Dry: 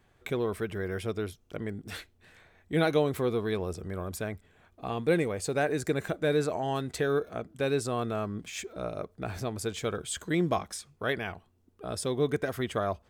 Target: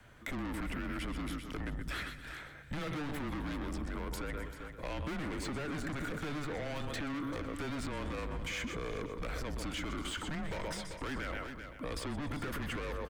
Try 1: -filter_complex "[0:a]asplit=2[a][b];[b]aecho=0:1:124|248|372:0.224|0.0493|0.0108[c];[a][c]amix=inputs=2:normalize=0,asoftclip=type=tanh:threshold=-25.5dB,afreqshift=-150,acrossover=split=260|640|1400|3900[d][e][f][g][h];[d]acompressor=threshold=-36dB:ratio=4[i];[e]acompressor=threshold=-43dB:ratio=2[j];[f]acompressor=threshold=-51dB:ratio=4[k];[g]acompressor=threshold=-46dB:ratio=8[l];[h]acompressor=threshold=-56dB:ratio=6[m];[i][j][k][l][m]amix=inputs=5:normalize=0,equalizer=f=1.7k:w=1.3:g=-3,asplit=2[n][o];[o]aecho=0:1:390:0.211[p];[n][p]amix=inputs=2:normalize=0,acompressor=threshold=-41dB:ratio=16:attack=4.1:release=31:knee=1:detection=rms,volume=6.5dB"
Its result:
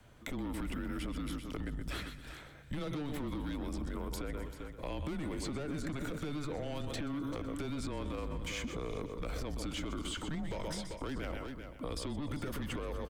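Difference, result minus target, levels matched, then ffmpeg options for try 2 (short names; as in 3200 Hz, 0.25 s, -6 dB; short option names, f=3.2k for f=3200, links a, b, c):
2000 Hz band -5.0 dB; soft clip: distortion -7 dB
-filter_complex "[0:a]asplit=2[a][b];[b]aecho=0:1:124|248|372:0.224|0.0493|0.0108[c];[a][c]amix=inputs=2:normalize=0,asoftclip=type=tanh:threshold=-35.5dB,afreqshift=-150,acrossover=split=260|640|1400|3900[d][e][f][g][h];[d]acompressor=threshold=-36dB:ratio=4[i];[e]acompressor=threshold=-43dB:ratio=2[j];[f]acompressor=threshold=-51dB:ratio=4[k];[g]acompressor=threshold=-46dB:ratio=8[l];[h]acompressor=threshold=-56dB:ratio=6[m];[i][j][k][l][m]amix=inputs=5:normalize=0,equalizer=f=1.7k:w=1.3:g=4.5,asplit=2[n][o];[o]aecho=0:1:390:0.211[p];[n][p]amix=inputs=2:normalize=0,acompressor=threshold=-41dB:ratio=16:attack=4.1:release=31:knee=1:detection=rms,volume=6.5dB"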